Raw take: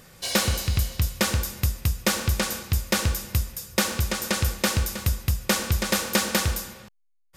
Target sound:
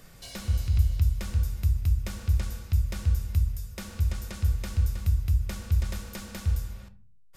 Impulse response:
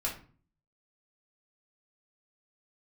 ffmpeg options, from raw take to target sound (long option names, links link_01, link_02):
-filter_complex "[0:a]acrossover=split=120[link_01][link_02];[link_02]acompressor=threshold=-48dB:ratio=2[link_03];[link_01][link_03]amix=inputs=2:normalize=0,asplit=2[link_04][link_05];[1:a]atrim=start_sample=2205,lowshelf=frequency=250:gain=12[link_06];[link_05][link_06]afir=irnorm=-1:irlink=0,volume=-10dB[link_07];[link_04][link_07]amix=inputs=2:normalize=0,volume=-6dB"